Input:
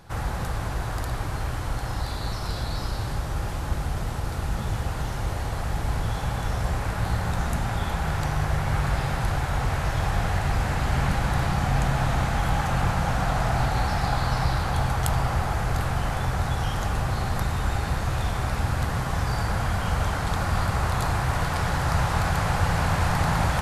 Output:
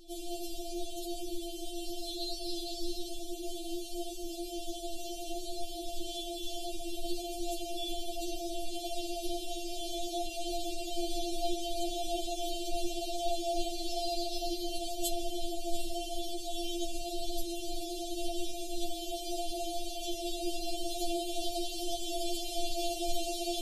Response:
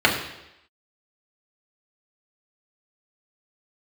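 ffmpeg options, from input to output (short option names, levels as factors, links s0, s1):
-filter_complex "[0:a]asuperstop=centerf=1400:order=12:qfactor=0.6,equalizer=f=2400:w=2.1:g=6,asplit=2[s0][s1];[1:a]atrim=start_sample=2205[s2];[s1][s2]afir=irnorm=-1:irlink=0,volume=0.0316[s3];[s0][s3]amix=inputs=2:normalize=0,afftfilt=real='re*4*eq(mod(b,16),0)':imag='im*4*eq(mod(b,16),0)':win_size=2048:overlap=0.75"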